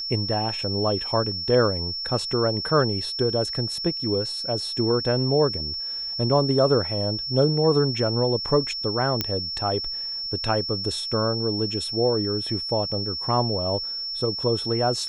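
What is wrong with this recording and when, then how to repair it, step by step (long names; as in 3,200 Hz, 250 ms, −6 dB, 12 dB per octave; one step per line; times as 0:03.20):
whistle 5,400 Hz −28 dBFS
0:09.21: click −7 dBFS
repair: click removal
notch filter 5,400 Hz, Q 30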